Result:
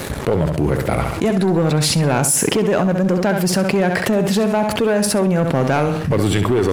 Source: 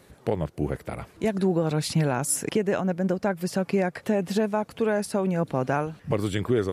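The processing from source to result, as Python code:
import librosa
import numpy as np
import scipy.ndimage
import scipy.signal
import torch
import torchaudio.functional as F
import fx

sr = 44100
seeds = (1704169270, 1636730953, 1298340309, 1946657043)

y = fx.leveller(x, sr, passes=2)
y = fx.echo_feedback(y, sr, ms=67, feedback_pct=27, wet_db=-10)
y = fx.env_flatten(y, sr, amount_pct=70)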